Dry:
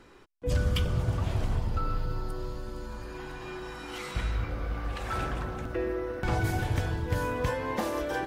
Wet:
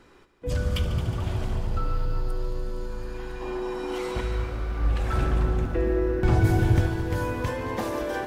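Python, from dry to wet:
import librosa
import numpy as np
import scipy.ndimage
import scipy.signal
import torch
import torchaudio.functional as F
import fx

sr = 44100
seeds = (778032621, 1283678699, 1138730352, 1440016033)

y = fx.spec_box(x, sr, start_s=3.41, length_s=0.8, low_hz=200.0, high_hz=1100.0, gain_db=7)
y = fx.low_shelf(y, sr, hz=360.0, db=9.5, at=(4.79, 6.87))
y = fx.echo_heads(y, sr, ms=73, heads='all three', feedback_pct=66, wet_db=-16)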